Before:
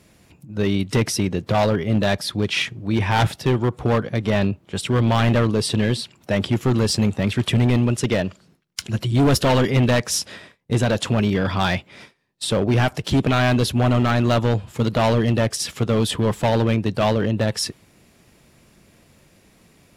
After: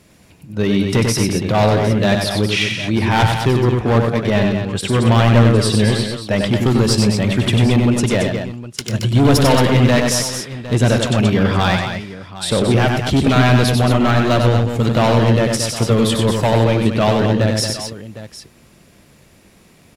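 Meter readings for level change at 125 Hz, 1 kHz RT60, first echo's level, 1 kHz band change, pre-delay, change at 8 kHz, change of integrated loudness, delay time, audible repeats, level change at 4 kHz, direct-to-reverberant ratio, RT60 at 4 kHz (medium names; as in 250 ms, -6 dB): +5.5 dB, no reverb, -4.5 dB, +5.0 dB, no reverb, +5.0 dB, +5.0 dB, 95 ms, 3, +5.0 dB, no reverb, no reverb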